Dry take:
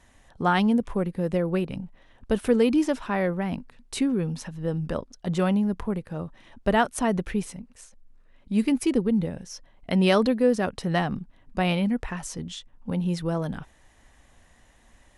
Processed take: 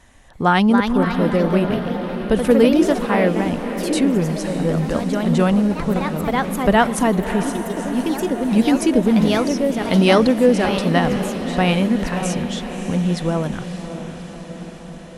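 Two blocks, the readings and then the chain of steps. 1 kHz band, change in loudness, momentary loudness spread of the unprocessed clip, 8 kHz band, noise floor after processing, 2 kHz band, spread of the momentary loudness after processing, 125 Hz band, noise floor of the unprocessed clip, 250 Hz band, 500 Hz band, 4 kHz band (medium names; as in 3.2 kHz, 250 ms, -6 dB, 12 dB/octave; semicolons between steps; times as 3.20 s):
+8.5 dB, +7.5 dB, 15 LU, +8.0 dB, -36 dBFS, +8.5 dB, 11 LU, +7.5 dB, -58 dBFS, +8.0 dB, +8.5 dB, +8.5 dB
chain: echo that smears into a reverb 595 ms, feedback 67%, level -10.5 dB; ever faster or slower copies 331 ms, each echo +2 st, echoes 3, each echo -6 dB; trim +6.5 dB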